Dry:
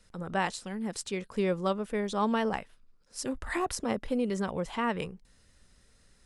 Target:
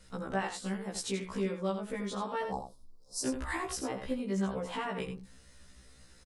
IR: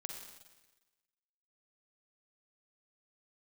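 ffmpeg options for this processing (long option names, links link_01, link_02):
-filter_complex "[0:a]acompressor=threshold=-37dB:ratio=6,asettb=1/sr,asplit=3[link_01][link_02][link_03];[link_01]atrim=end=2.434[link_04];[link_02]atrim=start=2.43:end=3.25,asetpts=PTS-STARTPTS,afade=type=in:duration=0.004:curve=qsin,afade=type=out:start_time=0.816:duration=0.004:curve=qsin,asuperstop=centerf=2100:order=8:qfactor=0.69[link_05];[link_03]atrim=start=3.246[link_06];[link_04][link_05]acrossfade=duration=0.004:curve1=hsin:curve2=qsin[link_07];[link_07][link_06]acrossfade=duration=0.004:curve1=qsin:curve2=hsin,asplit=2[link_08][link_09];[link_09]aecho=0:1:82:0.398[link_10];[link_08][link_10]amix=inputs=2:normalize=0,afftfilt=real='re*1.73*eq(mod(b,3),0)':imag='im*1.73*eq(mod(b,3),0)':win_size=2048:overlap=0.75,volume=7dB"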